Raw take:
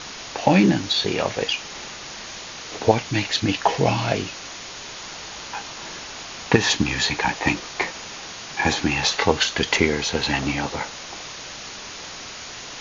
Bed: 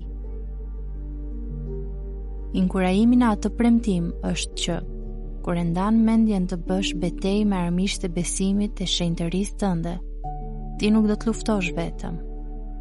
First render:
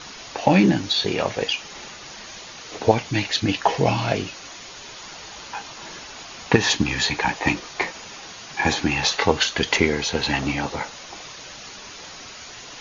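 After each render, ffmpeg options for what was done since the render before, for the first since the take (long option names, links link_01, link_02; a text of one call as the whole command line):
ffmpeg -i in.wav -af "afftdn=noise_reduction=6:noise_floor=-37" out.wav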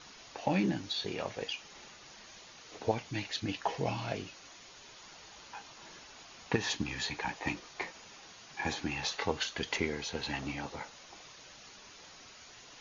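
ffmpeg -i in.wav -af "volume=-14dB" out.wav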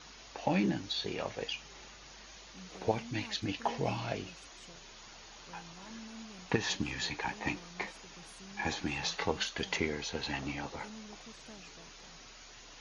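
ffmpeg -i in.wav -i bed.wav -filter_complex "[1:a]volume=-30.5dB[link_01];[0:a][link_01]amix=inputs=2:normalize=0" out.wav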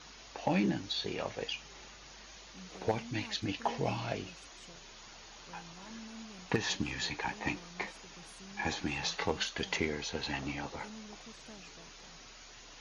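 ffmpeg -i in.wav -af "volume=19.5dB,asoftclip=hard,volume=-19.5dB" out.wav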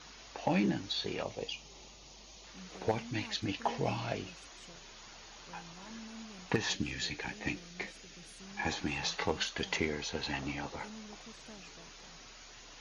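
ffmpeg -i in.wav -filter_complex "[0:a]asettb=1/sr,asplit=3[link_01][link_02][link_03];[link_01]atrim=end=1.234[link_04];[link_02]atrim=start=1.23:end=2.44,asetpts=PTS-STARTPTS,afade=type=in:duration=0.004:curve=qsin,afade=type=out:start_time=1.206:duration=0.004:curve=qsin,equalizer=frequency=1600:width=1.8:gain=-14[link_05];[link_03]atrim=start=2.436[link_06];[link_04][link_05]acrossfade=duration=0.004:curve1=hsin:curve2=qsin[link_07];[link_07][link_06]acrossfade=duration=0.004:curve1=qsin:curve2=hsin,asettb=1/sr,asplit=3[link_08][link_09][link_10];[link_08]atrim=end=6.734[link_11];[link_09]atrim=start=6.73:end=8.4,asetpts=PTS-STARTPTS,afade=type=in:duration=0.004:curve=qsin,afade=type=out:start_time=1.666:duration=0.004:curve=qsin,equalizer=frequency=970:width=1.7:gain=-11[link_12];[link_10]atrim=start=8.396[link_13];[link_11][link_12]acrossfade=duration=0.004:curve1=hsin:curve2=qsin[link_14];[link_14][link_13]acrossfade=duration=0.004:curve1=qsin:curve2=hsin" out.wav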